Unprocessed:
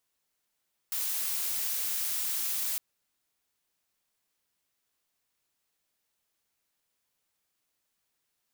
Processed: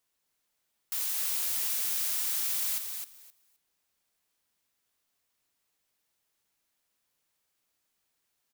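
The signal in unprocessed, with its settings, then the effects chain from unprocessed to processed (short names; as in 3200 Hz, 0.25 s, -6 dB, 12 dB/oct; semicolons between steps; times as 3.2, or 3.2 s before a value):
noise blue, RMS -31.5 dBFS 1.86 s
feedback echo 0.261 s, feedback 16%, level -6 dB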